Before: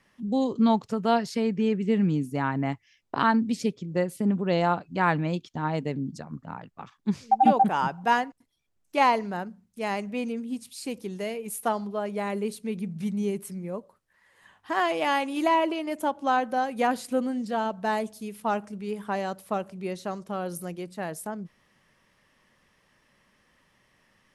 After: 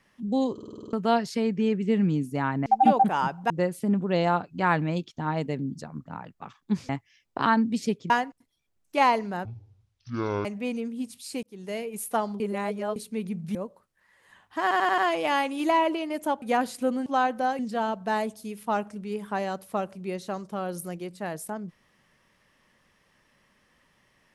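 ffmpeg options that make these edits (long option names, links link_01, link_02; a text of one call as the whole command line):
ffmpeg -i in.wav -filter_complex "[0:a]asplit=26[link_01][link_02][link_03][link_04][link_05][link_06][link_07][link_08][link_09][link_10][link_11][link_12][link_13][link_14][link_15][link_16][link_17][link_18][link_19][link_20][link_21][link_22][link_23][link_24][link_25][link_26];[link_01]atrim=end=0.582[link_27];[link_02]atrim=start=0.528:end=0.582[link_28];[link_03]atrim=start=0.528:end=0.582[link_29];[link_04]atrim=start=0.528:end=0.582[link_30];[link_05]atrim=start=0.528:end=0.582[link_31];[link_06]atrim=start=0.528:end=0.582[link_32];[link_07]atrim=start=0.528:end=0.582[link_33];[link_08]atrim=start=0.528:end=0.582[link_34];[link_09]atrim=start=0.928:end=2.662[link_35];[link_10]atrim=start=7.258:end=8.102[link_36];[link_11]atrim=start=3.868:end=7.262[link_37];[link_12]atrim=start=2.658:end=3.872[link_38];[link_13]atrim=start=8.098:end=9.454[link_39];[link_14]atrim=start=9.45:end=9.97,asetpts=PTS-STARTPTS,asetrate=22932,aresample=44100[link_40];[link_15]atrim=start=9.966:end=10.95,asetpts=PTS-STARTPTS,afade=type=out:start_time=0.98:duration=0.004:curve=hsin[link_41];[link_16]atrim=start=10.95:end=11.922,asetpts=PTS-STARTPTS,afade=type=in:duration=0.34[link_42];[link_17]atrim=start=11.918:end=12.482,asetpts=PTS-STARTPTS,areverse[link_43];[link_18]atrim=start=12.478:end=13.072[link_44];[link_19]atrim=start=13.678:end=14.842[link_45];[link_20]atrim=start=14.748:end=14.842[link_46];[link_21]atrim=start=14.748:end=14.842[link_47];[link_22]atrim=start=14.748:end=14.842[link_48];[link_23]atrim=start=14.748:end=16.192[link_49];[link_24]atrim=start=16.718:end=17.362[link_50];[link_25]atrim=start=16.188:end=16.722[link_51];[link_26]atrim=start=17.358[link_52];[link_27][link_28]acrossfade=duration=0.004:curve1=hsin:curve2=hsin[link_53];[link_53][link_29]acrossfade=duration=0.004:curve1=hsin:curve2=hsin[link_54];[link_54][link_30]acrossfade=duration=0.004:curve1=hsin:curve2=hsin[link_55];[link_55][link_31]acrossfade=duration=0.004:curve1=hsin:curve2=hsin[link_56];[link_56][link_32]acrossfade=duration=0.004:curve1=hsin:curve2=hsin[link_57];[link_57][link_33]acrossfade=duration=0.004:curve1=hsin:curve2=hsin[link_58];[link_58][link_34]acrossfade=duration=0.004:curve1=hsin:curve2=hsin[link_59];[link_59][link_35]acrossfade=duration=0.004:curve1=hsin:curve2=hsin[link_60];[link_60][link_36]acrossfade=duration=0.004:curve1=hsin:curve2=hsin[link_61];[link_61][link_37]acrossfade=duration=0.004:curve1=hsin:curve2=hsin[link_62];[link_62][link_38]acrossfade=duration=0.004:curve1=hsin:curve2=hsin[link_63];[link_63][link_39]acrossfade=duration=0.004:curve1=hsin:curve2=hsin[link_64];[link_64][link_40]acrossfade=duration=0.004:curve1=hsin:curve2=hsin[link_65];[link_41][link_42]concat=n=2:v=0:a=1[link_66];[link_65][link_66]acrossfade=duration=0.004:curve1=hsin:curve2=hsin[link_67];[link_67][link_43]acrossfade=duration=0.004:curve1=hsin:curve2=hsin[link_68];[link_68][link_44]acrossfade=duration=0.004:curve1=hsin:curve2=hsin[link_69];[link_69][link_45]acrossfade=duration=0.004:curve1=hsin:curve2=hsin[link_70];[link_70][link_46]acrossfade=duration=0.004:curve1=hsin:curve2=hsin[link_71];[link_71][link_47]acrossfade=duration=0.004:curve1=hsin:curve2=hsin[link_72];[link_72][link_48]acrossfade=duration=0.004:curve1=hsin:curve2=hsin[link_73];[link_73][link_49]acrossfade=duration=0.004:curve1=hsin:curve2=hsin[link_74];[link_74][link_50]acrossfade=duration=0.004:curve1=hsin:curve2=hsin[link_75];[link_75][link_51]acrossfade=duration=0.004:curve1=hsin:curve2=hsin[link_76];[link_76][link_52]acrossfade=duration=0.004:curve1=hsin:curve2=hsin" out.wav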